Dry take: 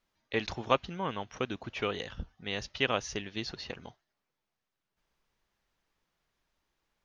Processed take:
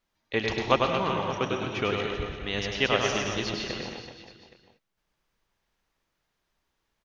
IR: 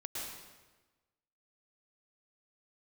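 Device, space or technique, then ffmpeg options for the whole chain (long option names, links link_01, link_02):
keyed gated reverb: -filter_complex "[0:a]asplit=3[link_01][link_02][link_03];[1:a]atrim=start_sample=2205[link_04];[link_02][link_04]afir=irnorm=-1:irlink=0[link_05];[link_03]apad=whole_len=310642[link_06];[link_05][link_06]sidechaingate=range=-33dB:threshold=-51dB:ratio=16:detection=peak,volume=-1dB[link_07];[link_01][link_07]amix=inputs=2:normalize=0,asettb=1/sr,asplit=3[link_08][link_09][link_10];[link_08]atrim=end=1.954[link_11];[link_09]atrim=start=1.95:end=2.37,asetpts=PTS-STARTPTS,afade=type=in:duration=0.004:curve=qsin,afade=type=out:start_time=0.416:duration=0.004:curve=qsin,lowpass=frequency=2800:poles=1[link_12];[link_10]atrim=start=2.366[link_13];[link_11][link_12]acrossfade=duration=0.004:curve1=hsin:curve2=qsin[link_14];[link_14][link_13]acrossfade=duration=0.004:curve1=qsin:curve2=hsin,aecho=1:1:100|225|381.2|576.6|820.7:0.631|0.398|0.251|0.158|0.1"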